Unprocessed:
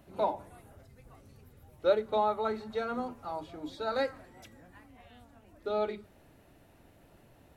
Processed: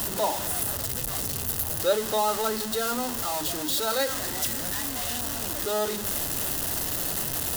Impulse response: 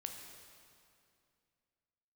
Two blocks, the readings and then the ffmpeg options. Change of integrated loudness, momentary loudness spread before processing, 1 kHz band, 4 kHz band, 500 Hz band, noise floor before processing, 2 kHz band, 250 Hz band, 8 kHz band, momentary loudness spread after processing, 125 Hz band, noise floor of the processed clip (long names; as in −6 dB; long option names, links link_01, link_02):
+7.0 dB, 14 LU, +5.0 dB, +17.5 dB, +3.5 dB, −61 dBFS, +10.0 dB, +7.0 dB, can't be measured, 3 LU, +14.5 dB, −32 dBFS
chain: -af "aeval=exprs='val(0)+0.5*0.0282*sgn(val(0))':channel_layout=same,bandreject=frequency=2300:width=5.9,crystalizer=i=4:c=0"